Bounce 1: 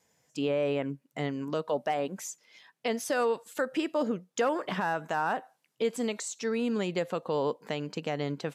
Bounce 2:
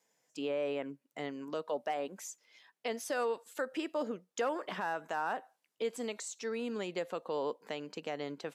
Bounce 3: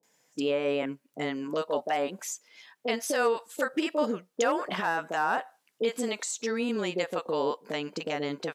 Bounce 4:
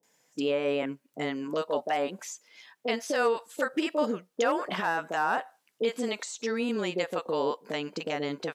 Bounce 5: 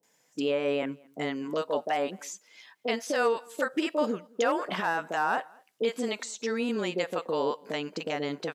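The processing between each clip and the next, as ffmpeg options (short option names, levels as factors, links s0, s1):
-af "highpass=260,volume=0.531"
-filter_complex "[0:a]acrossover=split=610[s0][s1];[s1]adelay=30[s2];[s0][s2]amix=inputs=2:normalize=0,volume=2.82"
-filter_complex "[0:a]acrossover=split=6400[s0][s1];[s1]acompressor=threshold=0.00398:ratio=4:attack=1:release=60[s2];[s0][s2]amix=inputs=2:normalize=0"
-filter_complex "[0:a]asplit=2[s0][s1];[s1]adelay=215.7,volume=0.0447,highshelf=f=4000:g=-4.85[s2];[s0][s2]amix=inputs=2:normalize=0"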